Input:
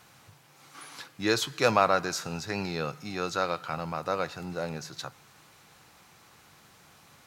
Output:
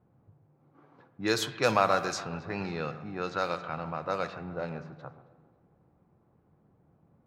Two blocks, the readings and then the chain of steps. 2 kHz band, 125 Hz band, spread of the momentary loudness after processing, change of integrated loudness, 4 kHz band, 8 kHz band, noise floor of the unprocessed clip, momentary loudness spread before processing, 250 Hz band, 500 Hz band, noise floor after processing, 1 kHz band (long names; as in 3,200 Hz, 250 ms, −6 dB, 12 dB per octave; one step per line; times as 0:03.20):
−2.0 dB, −1.5 dB, 13 LU, −1.5 dB, −3.0 dB, −4.0 dB, −58 dBFS, 18 LU, −1.5 dB, −1.5 dB, −67 dBFS, −1.5 dB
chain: delay that swaps between a low-pass and a high-pass 137 ms, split 1,800 Hz, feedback 67%, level −13 dB
low-pass that shuts in the quiet parts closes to 390 Hz, open at −23 dBFS
spring reverb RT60 1.3 s, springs 46 ms, chirp 35 ms, DRR 13.5 dB
level −2 dB